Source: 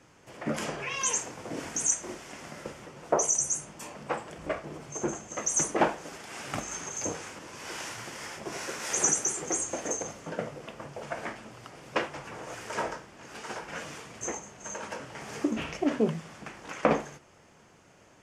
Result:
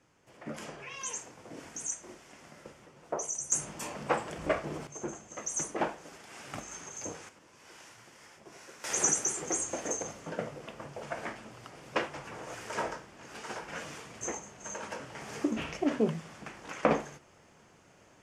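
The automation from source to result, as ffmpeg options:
-af "asetnsamples=n=441:p=0,asendcmd='3.52 volume volume 3dB;4.87 volume volume -7dB;7.29 volume volume -14.5dB;8.84 volume volume -2dB',volume=0.335"

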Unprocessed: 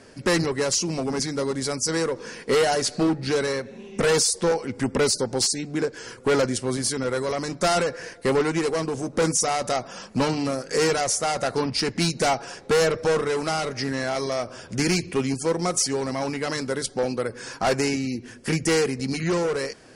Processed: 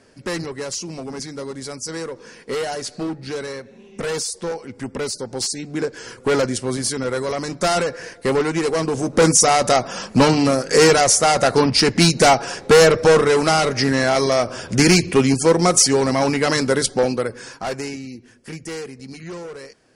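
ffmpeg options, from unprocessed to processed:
-af "volume=2.82,afade=t=in:st=5.18:d=0.77:silence=0.446684,afade=t=in:st=8.54:d=0.88:silence=0.473151,afade=t=out:st=16.78:d=0.8:silence=0.237137,afade=t=out:st=17.58:d=0.9:silence=0.501187"

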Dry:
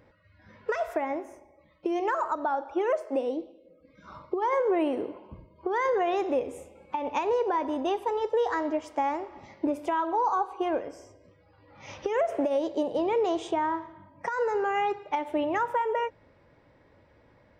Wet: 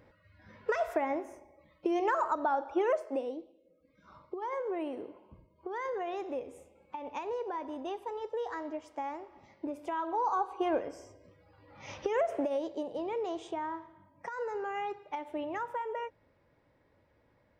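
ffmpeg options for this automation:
-af "volume=2.24,afade=t=out:st=2.81:d=0.6:silence=0.375837,afade=t=in:st=9.71:d=1.06:silence=0.375837,afade=t=out:st=11.9:d=0.93:silence=0.421697"

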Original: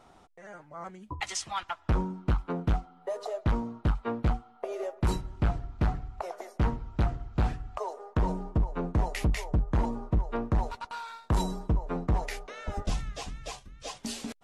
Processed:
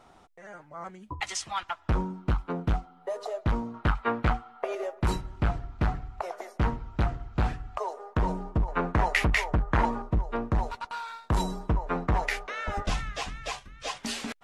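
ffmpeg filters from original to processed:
-af "asetnsamples=n=441:p=0,asendcmd='3.74 equalizer g 11.5;4.75 equalizer g 4.5;8.68 equalizer g 14.5;10.02 equalizer g 3.5;11.68 equalizer g 10.5',equalizer=f=1700:t=o:w=2.3:g=2"

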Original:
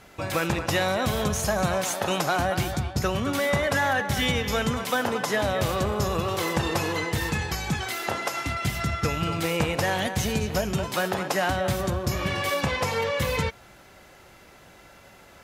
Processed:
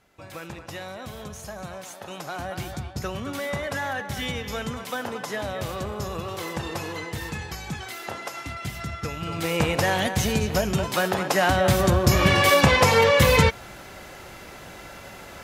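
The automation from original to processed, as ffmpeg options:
-af "volume=2.82,afade=t=in:st=2.09:d=0.66:silence=0.446684,afade=t=in:st=9.22:d=0.44:silence=0.398107,afade=t=in:st=11.24:d=1:silence=0.473151"

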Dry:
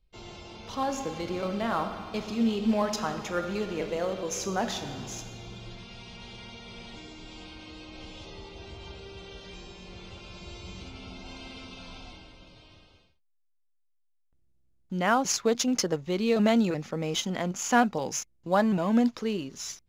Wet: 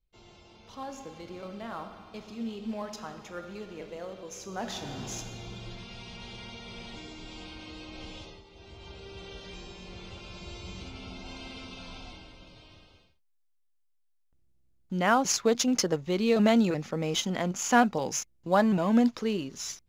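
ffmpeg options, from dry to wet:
-af "volume=4.22,afade=t=in:st=4.48:d=0.62:silence=0.281838,afade=t=out:st=8.16:d=0.28:silence=0.251189,afade=t=in:st=8.44:d=0.81:silence=0.266073"

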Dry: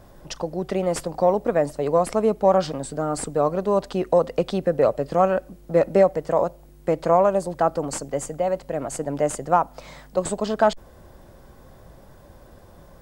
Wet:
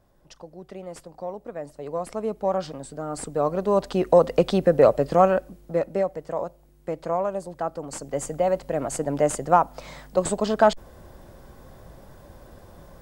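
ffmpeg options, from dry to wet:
-af "volume=3.98,afade=t=in:st=1.54:d=0.87:silence=0.421697,afade=t=in:st=3.03:d=1.29:silence=0.316228,afade=t=out:st=5.03:d=0.86:silence=0.281838,afade=t=in:st=7.87:d=0.48:silence=0.354813"

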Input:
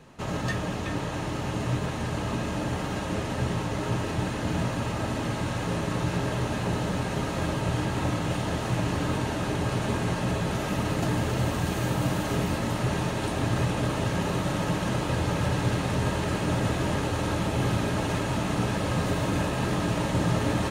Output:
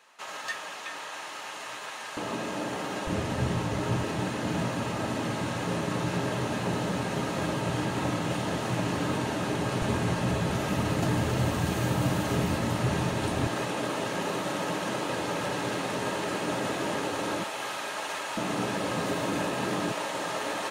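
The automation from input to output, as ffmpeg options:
-af "asetnsamples=n=441:p=0,asendcmd='2.17 highpass f 270;3.07 highpass f 63;4.03 highpass f 140;9.82 highpass f 66;13.47 highpass f 280;17.44 highpass f 760;18.37 highpass f 230;19.92 highpass f 530',highpass=980"

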